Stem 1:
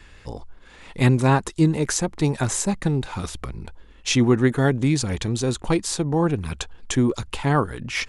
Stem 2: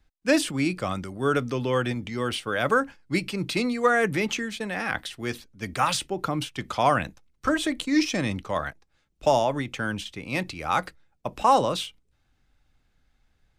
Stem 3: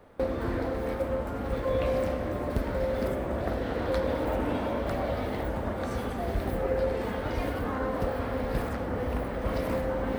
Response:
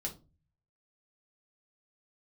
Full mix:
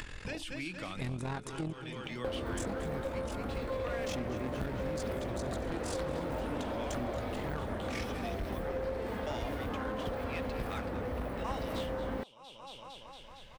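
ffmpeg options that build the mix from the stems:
-filter_complex "[0:a]tremolo=f=43:d=0.788,asoftclip=type=tanh:threshold=-20dB,volume=-3.5dB,asplit=3[link_01][link_02][link_03];[link_01]atrim=end=1.73,asetpts=PTS-STARTPTS,afade=type=out:start_time=1.726:duration=0.004:curve=hsin[link_04];[link_02]atrim=start=1.73:end=2.57,asetpts=PTS-STARTPTS,volume=0[link_05];[link_03]atrim=start=2.57,asetpts=PTS-STARTPTS,afade=type=in:duration=0.004:curve=hsin[link_06];[link_04][link_05][link_06]concat=n=3:v=0:a=1,asplit=3[link_07][link_08][link_09];[link_08]volume=-16.5dB[link_10];[1:a]equalizer=frequency=2900:width=0.96:gain=9.5,volume=-13dB,asplit=3[link_11][link_12][link_13];[link_12]volume=-15.5dB[link_14];[link_13]volume=-11.5dB[link_15];[2:a]adelay=2050,volume=3dB[link_16];[link_09]apad=whole_len=598960[link_17];[link_11][link_17]sidechaincompress=threshold=-44dB:ratio=8:attack=38:release=340[link_18];[3:a]atrim=start_sample=2205[link_19];[link_14][link_19]afir=irnorm=-1:irlink=0[link_20];[link_10][link_15]amix=inputs=2:normalize=0,aecho=0:1:229|458|687|916|1145|1374|1603|1832|2061:1|0.57|0.325|0.185|0.106|0.0602|0.0343|0.0195|0.0111[link_21];[link_07][link_18][link_16][link_20][link_21]amix=inputs=5:normalize=0,acompressor=mode=upward:threshold=-33dB:ratio=2.5,aeval=exprs='clip(val(0),-1,0.0708)':channel_layout=same,acompressor=threshold=-38dB:ratio=2.5"

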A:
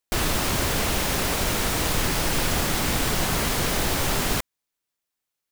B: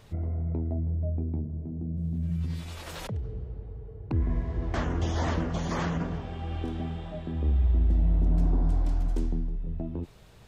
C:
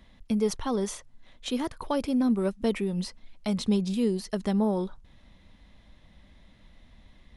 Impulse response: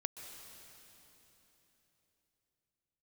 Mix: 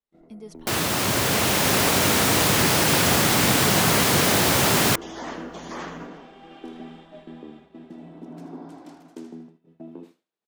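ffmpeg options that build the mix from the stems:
-filter_complex "[0:a]highpass=frequency=94:width=0.5412,highpass=frequency=94:width=1.3066,aeval=exprs='val(0)+0.00112*(sin(2*PI*60*n/s)+sin(2*PI*2*60*n/s)/2+sin(2*PI*3*60*n/s)/3+sin(2*PI*4*60*n/s)/4+sin(2*PI*5*60*n/s)/5)':channel_layout=same,adelay=550,volume=0.5dB[link_01];[1:a]highpass=frequency=230:width=0.5412,highpass=frequency=230:width=1.3066,equalizer=frequency=570:width=1.9:gain=-2.5,volume=-7dB,asplit=2[link_02][link_03];[link_03]volume=-10.5dB[link_04];[2:a]volume=-16dB[link_05];[link_04]aecho=0:1:79|158|237|316|395:1|0.39|0.152|0.0593|0.0231[link_06];[link_01][link_02][link_05][link_06]amix=inputs=4:normalize=0,agate=range=-33dB:threshold=-47dB:ratio=3:detection=peak,dynaudnorm=framelen=900:gausssize=3:maxgain=5.5dB"

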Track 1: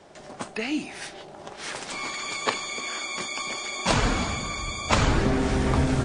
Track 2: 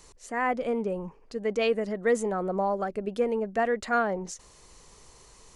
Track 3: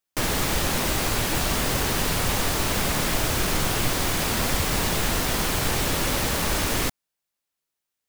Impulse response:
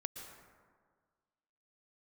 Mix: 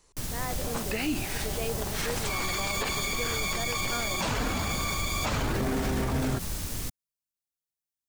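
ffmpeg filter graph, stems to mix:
-filter_complex "[0:a]adelay=350,volume=2dB[link_01];[1:a]volume=-9.5dB[link_02];[2:a]bass=frequency=250:gain=12,treble=frequency=4000:gain=10,volume=-18dB[link_03];[link_01][link_02][link_03]amix=inputs=3:normalize=0,alimiter=limit=-20dB:level=0:latency=1:release=40"

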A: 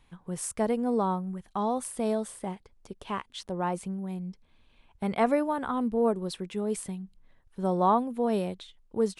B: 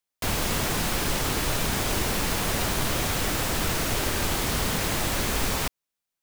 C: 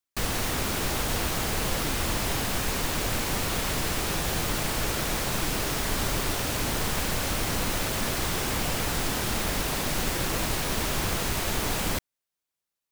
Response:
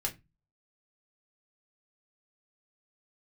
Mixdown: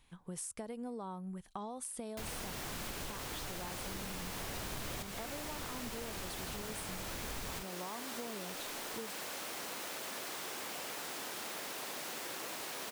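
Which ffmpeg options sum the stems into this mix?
-filter_complex "[0:a]highshelf=frequency=3000:gain=9,acompressor=threshold=-30dB:ratio=6,volume=-6dB,asplit=2[link_01][link_02];[1:a]adelay=1950,volume=-2dB[link_03];[2:a]highpass=360,adelay=2100,volume=-9.5dB[link_04];[link_02]apad=whole_len=360591[link_05];[link_03][link_05]sidechaincompress=threshold=-46dB:ratio=4:attack=7:release=1020[link_06];[link_01][link_06][link_04]amix=inputs=3:normalize=0,acompressor=threshold=-39dB:ratio=6"

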